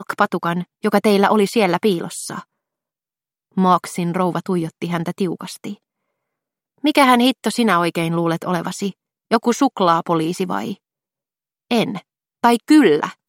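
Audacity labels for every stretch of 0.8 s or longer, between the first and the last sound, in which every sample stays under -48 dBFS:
2.430000	3.540000	silence
5.770000	6.780000	silence
10.770000	11.700000	silence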